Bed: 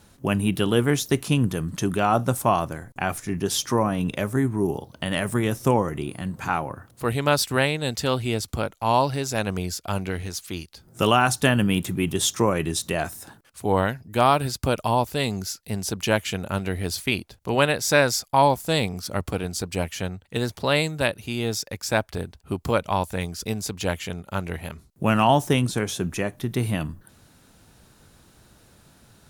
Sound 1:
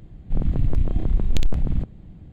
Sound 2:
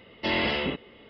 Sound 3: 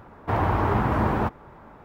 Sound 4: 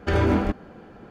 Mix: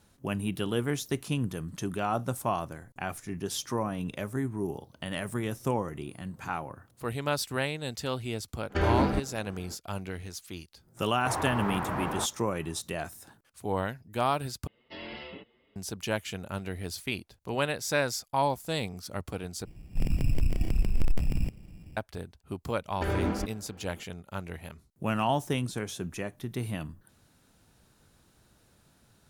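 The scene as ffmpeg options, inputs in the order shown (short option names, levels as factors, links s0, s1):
-filter_complex "[4:a]asplit=2[s0][s1];[0:a]volume=0.355[s2];[3:a]lowshelf=f=310:g=-11[s3];[2:a]asplit=2[s4][s5];[s5]adelay=6.8,afreqshift=2.7[s6];[s4][s6]amix=inputs=2:normalize=1[s7];[1:a]acrusher=samples=17:mix=1:aa=0.000001[s8];[s2]asplit=3[s9][s10][s11];[s9]atrim=end=14.674[s12];[s7]atrim=end=1.09,asetpts=PTS-STARTPTS,volume=0.224[s13];[s10]atrim=start=15.756:end=19.654[s14];[s8]atrim=end=2.32,asetpts=PTS-STARTPTS,volume=0.531[s15];[s11]atrim=start=21.966[s16];[s0]atrim=end=1.1,asetpts=PTS-STARTPTS,volume=0.596,afade=t=in:d=0.05,afade=t=out:st=1.05:d=0.05,adelay=8680[s17];[s3]atrim=end=1.84,asetpts=PTS-STARTPTS,volume=0.501,afade=t=in:d=0.004:c=hsin,afade=t=out:st=1.836:d=0.004:c=hsin,adelay=10970[s18];[s1]atrim=end=1.1,asetpts=PTS-STARTPTS,volume=0.376,afade=t=in:d=0.004:c=hsin,afade=t=out:st=1.096:d=0.004:c=hsin,adelay=22940[s19];[s12][s13]acrossfade=d=0.004:c1=hsin:c2=hsin[s20];[s20][s14]acrossfade=d=0.004:c1=hsin:c2=hsin[s21];[s21][s15]acrossfade=d=0.004:c1=hsin:c2=hsin[s22];[s22][s16]acrossfade=d=0.004:c1=hsin:c2=hsin[s23];[s23][s17][s18][s19]amix=inputs=4:normalize=0"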